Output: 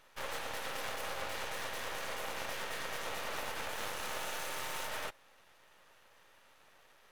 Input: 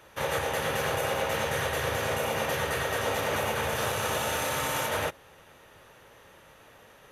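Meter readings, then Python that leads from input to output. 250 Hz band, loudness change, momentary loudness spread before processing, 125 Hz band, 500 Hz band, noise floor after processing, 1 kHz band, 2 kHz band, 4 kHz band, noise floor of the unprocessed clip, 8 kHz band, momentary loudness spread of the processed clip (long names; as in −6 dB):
−14.5 dB, −10.5 dB, 1 LU, −20.0 dB, −14.5 dB, −64 dBFS, −11.0 dB, −9.5 dB, −8.0 dB, −55 dBFS, −9.5 dB, 1 LU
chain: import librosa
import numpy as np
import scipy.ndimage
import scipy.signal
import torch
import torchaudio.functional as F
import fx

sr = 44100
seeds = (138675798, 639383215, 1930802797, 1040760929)

y = np.minimum(x, 2.0 * 10.0 ** (-27.0 / 20.0) - x)
y = scipy.signal.sosfilt(scipy.signal.butter(2, 630.0, 'highpass', fs=sr, output='sos'), y)
y = fx.high_shelf(y, sr, hz=9700.0, db=-4.5)
y = np.maximum(y, 0.0)
y = F.gain(torch.from_numpy(y), -3.5).numpy()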